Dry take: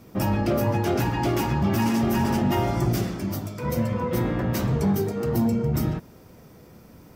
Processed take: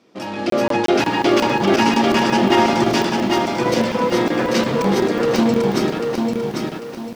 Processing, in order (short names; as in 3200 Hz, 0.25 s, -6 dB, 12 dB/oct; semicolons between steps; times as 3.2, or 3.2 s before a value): AGC gain up to 16 dB; in parallel at -11.5 dB: bit-crush 4-bit; on the sum: Chebyshev band-pass 300–3800 Hz, order 2; high shelf 3400 Hz +10 dB; crackling interface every 0.18 s, samples 1024, zero, from 0.5; lo-fi delay 0.794 s, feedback 35%, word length 7-bit, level -3.5 dB; gain -4.5 dB